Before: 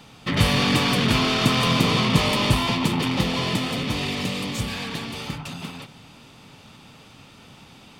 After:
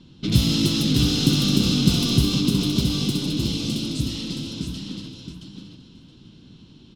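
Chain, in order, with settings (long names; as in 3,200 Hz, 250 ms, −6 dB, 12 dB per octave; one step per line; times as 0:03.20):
low-shelf EQ 110 Hz +5.5 dB
low-pass that shuts in the quiet parts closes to 2,400 Hz, open at −18.5 dBFS
flat-topped bell 960 Hz −16 dB 2.5 octaves
speed change +15%
on a send: repeating echo 671 ms, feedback 15%, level −6.5 dB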